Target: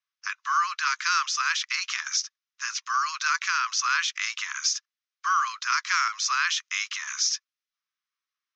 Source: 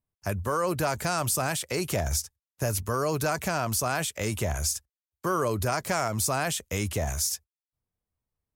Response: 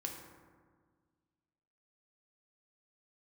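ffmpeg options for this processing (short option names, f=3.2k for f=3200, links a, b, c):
-af "asuperpass=centerf=2700:order=20:qfactor=0.51,bandreject=f=4.5k:w=26,volume=8dB"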